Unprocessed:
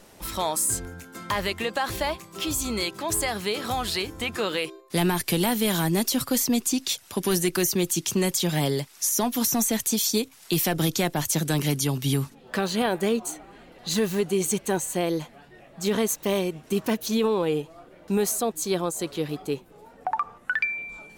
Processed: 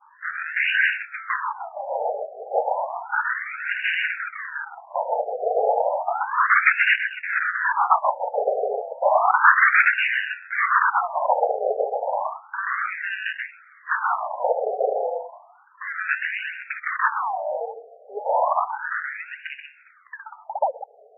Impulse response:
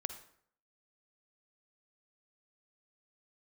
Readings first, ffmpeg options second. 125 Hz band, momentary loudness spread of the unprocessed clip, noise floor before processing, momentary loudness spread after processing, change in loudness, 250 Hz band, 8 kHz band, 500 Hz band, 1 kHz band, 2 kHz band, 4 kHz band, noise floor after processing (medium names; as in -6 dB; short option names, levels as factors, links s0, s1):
under -40 dB, 7 LU, -52 dBFS, 16 LU, +3.0 dB, under -30 dB, under -40 dB, +1.5 dB, +10.0 dB, +12.0 dB, -8.5 dB, -52 dBFS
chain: -filter_complex "[0:a]aemphasis=mode=production:type=75fm,asplit=2[s0][s1];[1:a]atrim=start_sample=2205,adelay=130[s2];[s1][s2]afir=irnorm=-1:irlink=0,volume=0.668[s3];[s0][s3]amix=inputs=2:normalize=0,acrusher=samples=23:mix=1:aa=0.000001:lfo=1:lforange=36.8:lforate=0.7,acontrast=77,adynamicequalizer=threshold=0.0562:dfrequency=1500:dqfactor=1.3:tfrequency=1500:tqfactor=1.3:attack=5:release=100:ratio=0.375:range=2.5:mode=boostabove:tftype=bell,afftfilt=real='re*between(b*sr/1024,570*pow(2100/570,0.5+0.5*sin(2*PI*0.32*pts/sr))/1.41,570*pow(2100/570,0.5+0.5*sin(2*PI*0.32*pts/sr))*1.41)':imag='im*between(b*sr/1024,570*pow(2100/570,0.5+0.5*sin(2*PI*0.32*pts/sr))/1.41,570*pow(2100/570,0.5+0.5*sin(2*PI*0.32*pts/sr))*1.41)':win_size=1024:overlap=0.75,volume=0.596"